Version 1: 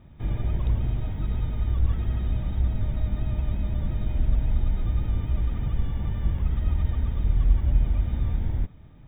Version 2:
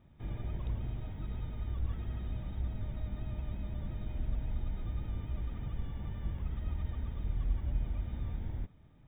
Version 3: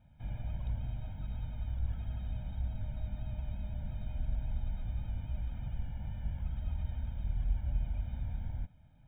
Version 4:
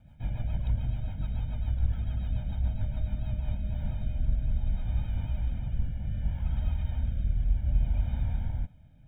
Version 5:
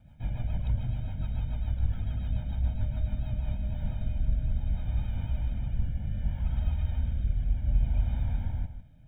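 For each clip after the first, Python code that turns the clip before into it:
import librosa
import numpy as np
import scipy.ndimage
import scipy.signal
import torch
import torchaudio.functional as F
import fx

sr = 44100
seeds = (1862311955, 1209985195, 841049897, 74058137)

y1 = fx.low_shelf(x, sr, hz=110.0, db=-4.0)
y1 = F.gain(torch.from_numpy(y1), -9.0).numpy()
y2 = y1 + 0.97 * np.pad(y1, (int(1.3 * sr / 1000.0), 0))[:len(y1)]
y2 = F.gain(torch.from_numpy(y2), -5.5).numpy()
y3 = fx.rotary_switch(y2, sr, hz=7.0, then_hz=0.65, switch_at_s=3.03)
y3 = F.gain(torch.from_numpy(y3), 8.5).numpy()
y4 = y3 + 10.0 ** (-10.5 / 20.0) * np.pad(y3, (int(156 * sr / 1000.0), 0))[:len(y3)]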